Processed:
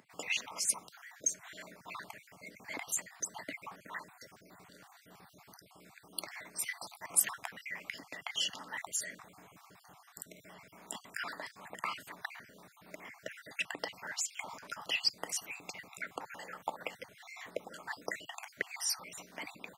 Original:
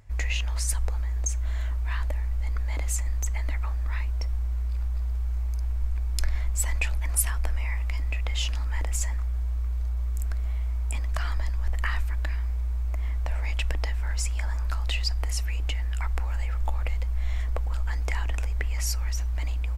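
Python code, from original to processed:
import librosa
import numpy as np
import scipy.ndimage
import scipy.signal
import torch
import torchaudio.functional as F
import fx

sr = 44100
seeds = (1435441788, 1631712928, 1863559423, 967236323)

y = fx.spec_dropout(x, sr, seeds[0], share_pct=46)
y = scipy.signal.sosfilt(scipy.signal.butter(6, 170.0, 'highpass', fs=sr, output='sos'), y)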